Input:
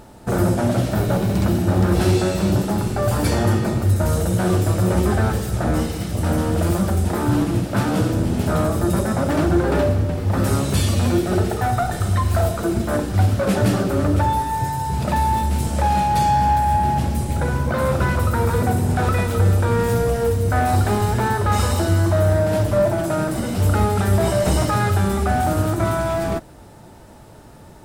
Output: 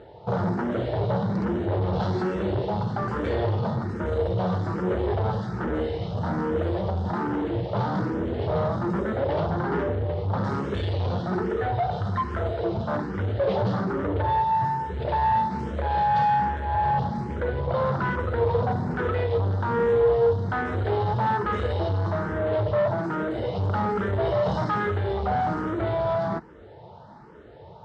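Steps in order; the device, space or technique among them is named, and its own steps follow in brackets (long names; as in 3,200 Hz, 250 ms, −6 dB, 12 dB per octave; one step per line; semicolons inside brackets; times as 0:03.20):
barber-pole phaser into a guitar amplifier (frequency shifter mixed with the dry sound +1.2 Hz; soft clipping −20 dBFS, distortion −12 dB; loudspeaker in its box 83–3,800 Hz, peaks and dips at 270 Hz −7 dB, 460 Hz +7 dB, 930 Hz +4 dB, 2,500 Hz −9 dB)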